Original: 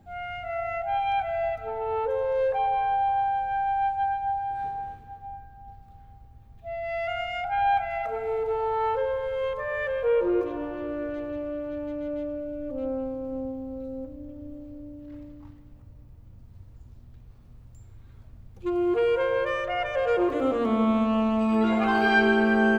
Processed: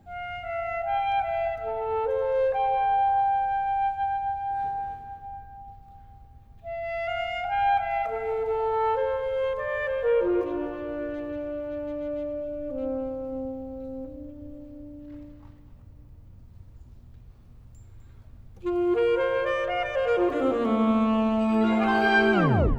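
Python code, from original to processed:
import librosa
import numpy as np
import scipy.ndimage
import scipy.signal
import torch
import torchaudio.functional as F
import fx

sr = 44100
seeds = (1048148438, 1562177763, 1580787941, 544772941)

y = fx.tape_stop_end(x, sr, length_s=0.46)
y = y + 10.0 ** (-11.5 / 20.0) * np.pad(y, (int(253 * sr / 1000.0), 0))[:len(y)]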